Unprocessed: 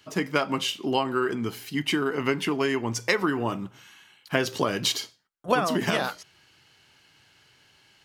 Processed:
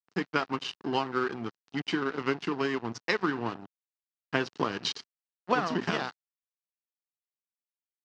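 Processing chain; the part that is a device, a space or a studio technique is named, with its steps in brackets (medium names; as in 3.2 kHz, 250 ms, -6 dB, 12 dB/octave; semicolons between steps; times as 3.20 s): low-pass 8.2 kHz 12 dB/octave; blown loudspeaker (crossover distortion -31.5 dBFS; cabinet simulation 130–5300 Hz, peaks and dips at 580 Hz -8 dB, 2.2 kHz -5 dB, 3.4 kHz -5 dB)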